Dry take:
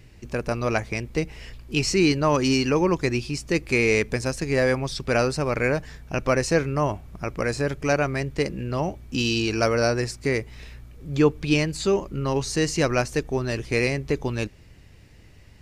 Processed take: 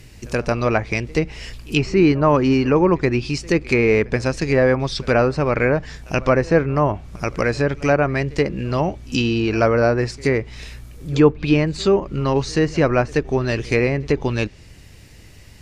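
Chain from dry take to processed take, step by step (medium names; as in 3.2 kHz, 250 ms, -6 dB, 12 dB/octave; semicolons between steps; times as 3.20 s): treble shelf 4.4 kHz +9.5 dB; low-pass that closes with the level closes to 1.6 kHz, closed at -18 dBFS; reverse echo 78 ms -24 dB; trim +5.5 dB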